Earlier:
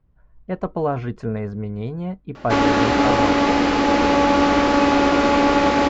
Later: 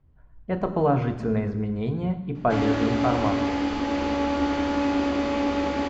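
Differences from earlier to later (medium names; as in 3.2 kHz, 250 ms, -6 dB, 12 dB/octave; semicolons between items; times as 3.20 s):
background -12.0 dB; reverb: on, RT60 1.1 s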